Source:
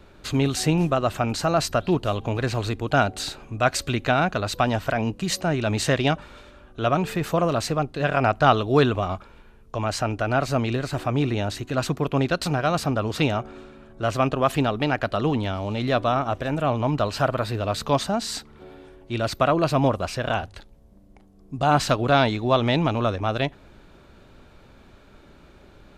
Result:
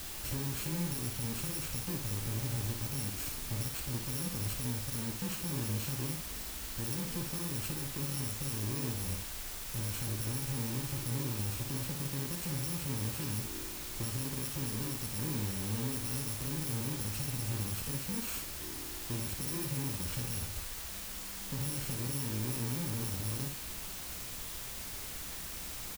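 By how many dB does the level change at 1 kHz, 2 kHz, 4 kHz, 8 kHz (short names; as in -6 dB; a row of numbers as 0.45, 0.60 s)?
-24.0, -16.5, -10.5, -1.0 dB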